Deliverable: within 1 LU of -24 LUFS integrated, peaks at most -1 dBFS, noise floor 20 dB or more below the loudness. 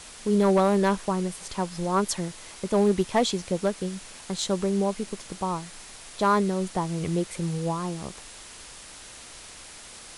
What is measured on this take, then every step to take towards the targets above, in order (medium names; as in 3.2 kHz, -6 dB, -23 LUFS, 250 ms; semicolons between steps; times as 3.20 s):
clipped samples 0.4%; clipping level -14.0 dBFS; noise floor -45 dBFS; noise floor target -47 dBFS; loudness -26.5 LUFS; peak level -14.0 dBFS; loudness target -24.0 LUFS
-> clip repair -14 dBFS; noise reduction 6 dB, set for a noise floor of -45 dBFS; trim +2.5 dB